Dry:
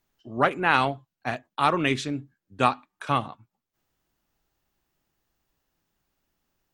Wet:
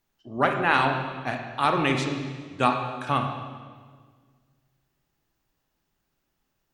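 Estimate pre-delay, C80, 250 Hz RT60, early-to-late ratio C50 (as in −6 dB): 27 ms, 6.5 dB, 2.1 s, 5.5 dB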